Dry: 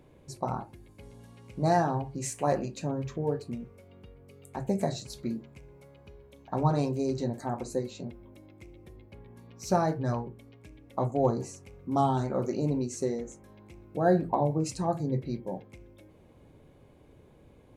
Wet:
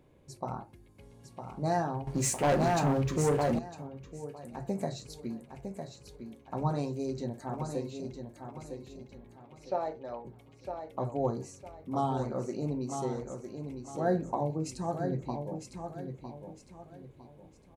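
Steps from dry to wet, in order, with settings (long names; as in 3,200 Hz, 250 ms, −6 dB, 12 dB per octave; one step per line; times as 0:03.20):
0:09.36–0:10.25: loudspeaker in its box 490–3,700 Hz, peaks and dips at 540 Hz +5 dB, 1,100 Hz −5 dB, 1,600 Hz −10 dB
repeating echo 956 ms, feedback 33%, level −7 dB
0:02.07–0:03.59: leveller curve on the samples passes 3
level −5 dB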